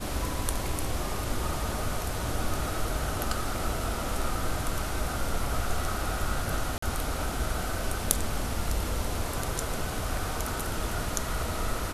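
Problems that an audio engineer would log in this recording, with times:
6.78–6.82 gap 44 ms

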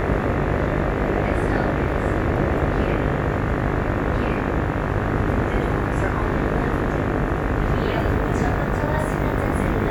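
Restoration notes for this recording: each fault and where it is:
buzz 50 Hz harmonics 37 -26 dBFS

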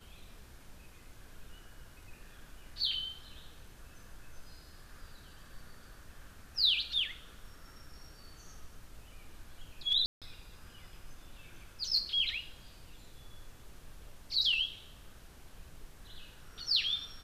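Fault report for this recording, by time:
10.06–10.22 gap 0.157 s

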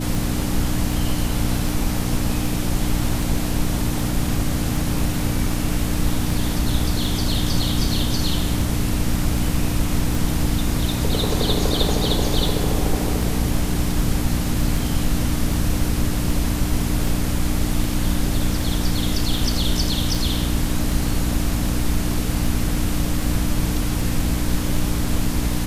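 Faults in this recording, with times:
hum 60 Hz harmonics 5 -25 dBFS
tick 78 rpm

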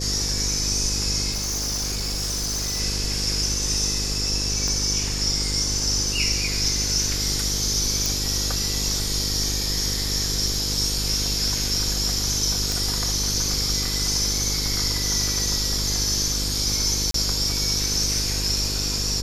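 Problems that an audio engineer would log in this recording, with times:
buzz 50 Hz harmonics 10 -29 dBFS
1.31–2.81 clipped -23 dBFS
4.68 pop -14 dBFS
8.06 pop
12.72 pop
17.11–17.14 gap 33 ms

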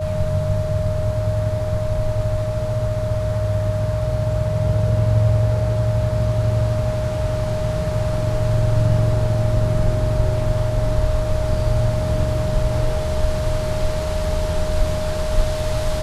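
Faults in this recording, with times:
tone 620 Hz -24 dBFS

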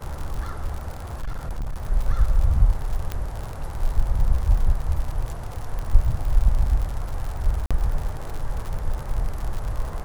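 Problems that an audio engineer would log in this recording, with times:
crackle 89/s -28 dBFS
1.19–1.76 clipped -24 dBFS
3.12 pop -14 dBFS
5.79 pop -19 dBFS
7.66–7.71 gap 46 ms

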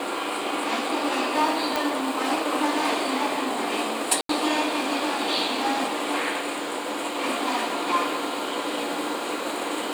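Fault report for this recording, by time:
1.76 pop
4.21–4.29 gap 83 ms

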